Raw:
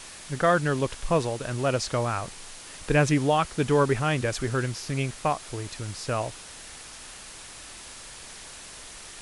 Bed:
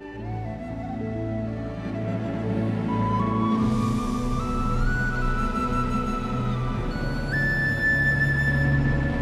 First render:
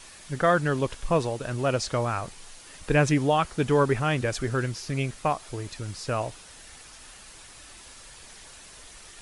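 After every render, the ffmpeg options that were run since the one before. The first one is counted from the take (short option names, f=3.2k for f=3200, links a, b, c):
-af "afftdn=nr=6:nf=-44"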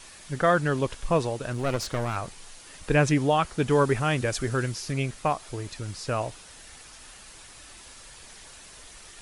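-filter_complex "[0:a]asettb=1/sr,asplit=3[a][b][c];[a]atrim=end=1.534[d];[b]atrim=start=1.53:end=2.16,asetpts=PTS-STARTPTS,afade=t=in:d=0.004:c=qsin,afade=t=out:st=0.626:d=0.004:c=qsin,aeval=exprs='clip(val(0),-1,0.0237)':c=same[e];[c]atrim=start=2.156[f];[d][e]acrossfade=d=0.004:c1=hsin:c2=qsin[g];[g][f]acrossfade=d=0.004:c1=qsin:c2=hsin,asettb=1/sr,asplit=3[h][i][j];[h]atrim=end=3.704[k];[i]atrim=start=3.7:end=4.93,asetpts=PTS-STARTPTS,afade=t=in:d=0.004:c=qsin,afade=t=out:st=1.226:d=0.004:c=qsin,highshelf=f=6.6k:g=5.5[l];[j]atrim=start=4.926[m];[k][l]acrossfade=d=0.004:c1=hsin:c2=qsin[n];[n][m]acrossfade=d=0.004:c1=qsin:c2=hsin"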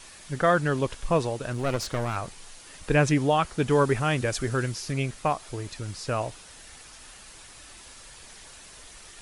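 -af anull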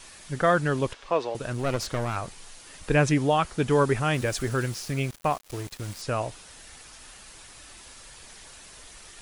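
-filter_complex "[0:a]asettb=1/sr,asplit=3[a][b][c];[a]atrim=end=0.934[d];[b]atrim=start=0.93:end=1.35,asetpts=PTS-STARTPTS,afade=t=in:d=0.004:c=qsin,afade=t=out:st=0.416:d=0.004:c=qsin,acrossover=split=300 5500:gain=0.0891 1 0.0891[e][f][g];[e][f][g]amix=inputs=3:normalize=0[h];[c]atrim=start=1.346[i];[d][h]acrossfade=d=0.004:c1=hsin:c2=qsin[j];[j][i]acrossfade=d=0.004:c1=qsin:c2=hsin,asettb=1/sr,asplit=3[k][l][m];[k]atrim=end=4.144[n];[l]atrim=start=4.14:end=6.02,asetpts=PTS-STARTPTS,afade=t=in:d=0.004:c=qsin,afade=t=out:st=1.876:d=0.004:c=qsin,aeval=exprs='val(0)*gte(abs(val(0)),0.0119)':c=same[o];[m]atrim=start=6.016[p];[n][o]acrossfade=d=0.004:c1=hsin:c2=qsin[q];[q][p]acrossfade=d=0.004:c1=qsin:c2=hsin"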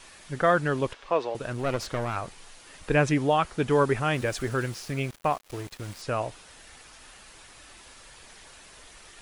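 -af "bass=f=250:g=-3,treble=f=4k:g=-5"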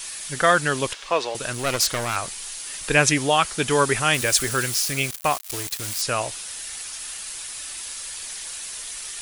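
-af "crystalizer=i=9:c=0"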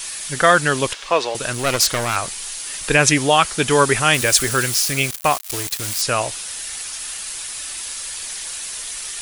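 -af "volume=4.5dB,alimiter=limit=-1dB:level=0:latency=1"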